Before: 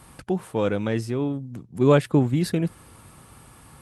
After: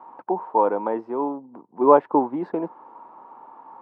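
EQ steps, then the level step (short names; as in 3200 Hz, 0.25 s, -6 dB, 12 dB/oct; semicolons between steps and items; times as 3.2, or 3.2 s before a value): HPF 280 Hz 24 dB/oct; synth low-pass 930 Hz, resonance Q 8.3; air absorption 60 m; 0.0 dB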